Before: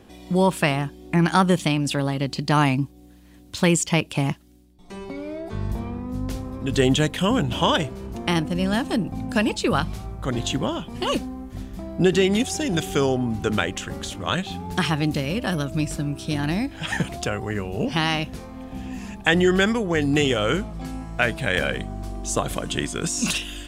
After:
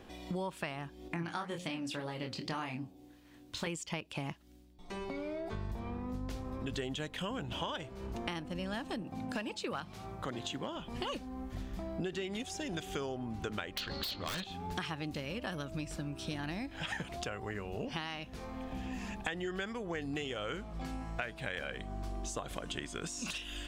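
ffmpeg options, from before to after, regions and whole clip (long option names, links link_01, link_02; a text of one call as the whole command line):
ffmpeg -i in.wav -filter_complex "[0:a]asettb=1/sr,asplit=3[link_01][link_02][link_03];[link_01]atrim=end=1.084[link_04];[link_02]atrim=start=1.08:end=3.67,asetpts=PTS-STARTPTS,afade=type=in:duration=0.004:curve=qsin,afade=type=out:start_time=2.586:duration=0.004:curve=qsin,asplit=2[link_05][link_06];[link_06]adelay=24,volume=-5dB[link_07];[link_05][link_07]amix=inputs=2:normalize=0,atrim=end_sample=114219,flanger=delay=1.6:depth=9.1:regen=78:speed=1.9:shape=sinusoidal,bandreject=frequency=89.26:width_type=h:width=4,bandreject=frequency=178.52:width_type=h:width=4,bandreject=frequency=267.78:width_type=h:width=4,bandreject=frequency=357.04:width_type=h:width=4,bandreject=frequency=446.3:width_type=h:width=4,bandreject=frequency=535.56:width_type=h:width=4,bandreject=frequency=624.82:width_type=h:width=4,bandreject=frequency=714.08:width_type=h:width=4,bandreject=frequency=803.34:width_type=h:width=4,bandreject=frequency=892.6:width_type=h:width=4[link_08];[link_03]atrim=start=3.666[link_09];[link_04][link_08]acrossfade=duration=0.004:curve1=hsin:curve2=qsin[link_10];[link_10][link_09]acrossfade=duration=0.004:curve1=qsin:curve2=hsin,asettb=1/sr,asplit=3[link_11][link_12][link_13];[link_11]atrim=end=9.024[link_14];[link_12]atrim=start=9.02:end=10.76,asetpts=PTS-STARTPTS,afade=type=in:duration=0.004:curve=qsin,afade=type=out:start_time=1.736:duration=0.004:curve=qsin,highpass=120,volume=13dB,asoftclip=hard,volume=-13dB[link_15];[link_13]atrim=start=10.756[link_16];[link_14][link_15]acrossfade=duration=0.004:curve1=hsin:curve2=qsin[link_17];[link_17][link_16]acrossfade=duration=0.004:curve1=qsin:curve2=hsin,asettb=1/sr,asplit=3[link_18][link_19][link_20];[link_18]atrim=end=13.774[link_21];[link_19]atrim=start=13.77:end=14.44,asetpts=PTS-STARTPTS,afade=type=in:duration=0.004:curve=qsin,afade=type=out:start_time=0.666:duration=0.004:curve=qsin,acontrast=65,lowpass=frequency=4300:width_type=q:width=15,aeval=exprs='0.2*(abs(mod(val(0)/0.2+3,4)-2)-1)':channel_layout=same[link_22];[link_20]atrim=start=14.436[link_23];[link_21][link_22]acrossfade=duration=0.004:curve1=hsin:curve2=qsin[link_24];[link_24][link_23]acrossfade=duration=0.004:curve1=qsin:curve2=hsin,equalizer=frequency=150:width_type=o:width=2.9:gain=-6,acompressor=threshold=-35dB:ratio=6,equalizer=frequency=11000:width_type=o:width=1.3:gain=-8,volume=-1dB" out.wav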